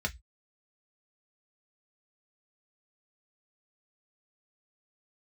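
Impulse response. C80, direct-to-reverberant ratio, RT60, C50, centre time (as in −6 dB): 34.5 dB, 2.0 dB, 0.10 s, 23.0 dB, 6 ms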